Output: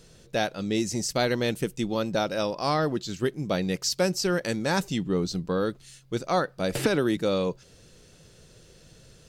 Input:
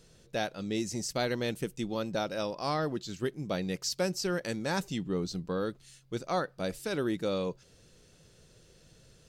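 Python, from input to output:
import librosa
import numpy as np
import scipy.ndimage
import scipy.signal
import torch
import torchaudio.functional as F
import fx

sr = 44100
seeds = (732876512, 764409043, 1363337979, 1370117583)

y = fx.band_squash(x, sr, depth_pct=100, at=(6.75, 7.17))
y = y * librosa.db_to_amplitude(6.0)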